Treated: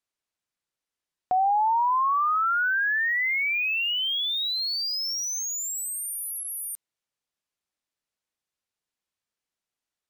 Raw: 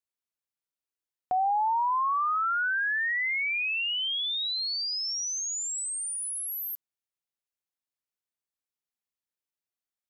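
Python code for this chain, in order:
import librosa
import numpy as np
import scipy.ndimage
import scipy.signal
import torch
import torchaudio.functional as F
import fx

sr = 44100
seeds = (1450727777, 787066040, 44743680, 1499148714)

y = np.interp(np.arange(len(x)), np.arange(len(x))[::2], x[::2])
y = F.gain(torch.from_numpy(y), 3.5).numpy()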